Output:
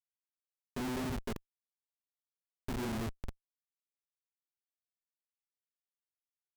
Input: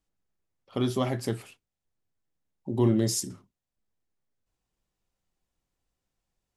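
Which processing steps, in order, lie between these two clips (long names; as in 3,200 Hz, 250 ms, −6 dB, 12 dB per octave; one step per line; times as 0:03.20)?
hum removal 49.97 Hz, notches 11
treble cut that deepens with the level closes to 370 Hz, closed at −24 dBFS
EQ curve with evenly spaced ripples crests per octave 1.5, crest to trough 17 dB
auto-filter low-pass saw down 2.9 Hz 570–3,300 Hz
comparator with hysteresis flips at −29.5 dBFS
level −3.5 dB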